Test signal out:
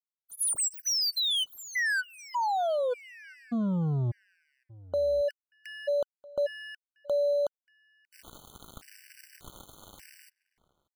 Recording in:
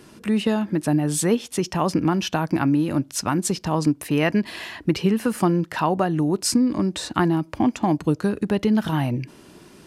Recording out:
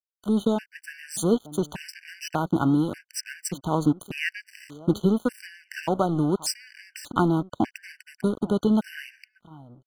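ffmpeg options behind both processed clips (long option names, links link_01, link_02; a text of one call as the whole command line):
ffmpeg -i in.wav -filter_complex "[0:a]aeval=exprs='sgn(val(0))*max(abs(val(0))-0.0237,0)':channel_layout=same,asplit=2[link_01][link_02];[link_02]adelay=583.1,volume=-21dB,highshelf=frequency=4000:gain=-13.1[link_03];[link_01][link_03]amix=inputs=2:normalize=0,afftfilt=real='re*gt(sin(2*PI*0.85*pts/sr)*(1-2*mod(floor(b*sr/1024/1500),2)),0)':imag='im*gt(sin(2*PI*0.85*pts/sr)*(1-2*mod(floor(b*sr/1024/1500),2)),0)':win_size=1024:overlap=0.75" out.wav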